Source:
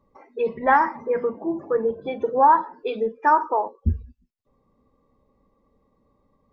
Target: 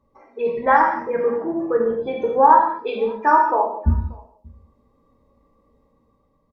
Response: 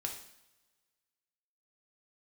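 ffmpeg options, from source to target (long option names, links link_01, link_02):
-filter_complex "[0:a]dynaudnorm=framelen=150:gausssize=9:maxgain=3.5dB,asplit=2[link_01][link_02];[link_02]adelay=583.1,volume=-26dB,highshelf=frequency=4000:gain=-13.1[link_03];[link_01][link_03]amix=inputs=2:normalize=0[link_04];[1:a]atrim=start_sample=2205,afade=type=out:start_time=0.22:duration=0.01,atrim=end_sample=10143,asetrate=32193,aresample=44100[link_05];[link_04][link_05]afir=irnorm=-1:irlink=0,volume=-1.5dB"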